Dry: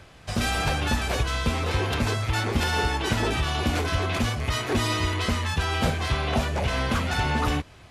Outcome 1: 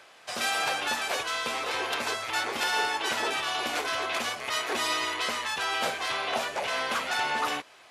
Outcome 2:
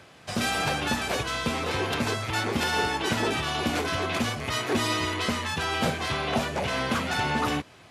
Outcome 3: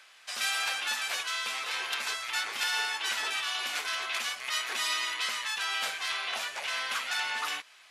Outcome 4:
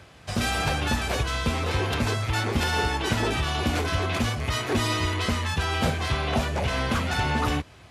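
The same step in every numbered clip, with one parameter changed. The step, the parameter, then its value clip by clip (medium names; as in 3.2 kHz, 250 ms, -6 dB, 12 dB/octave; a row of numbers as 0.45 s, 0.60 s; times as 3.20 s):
high-pass, cutoff frequency: 570 Hz, 150 Hz, 1.5 kHz, 55 Hz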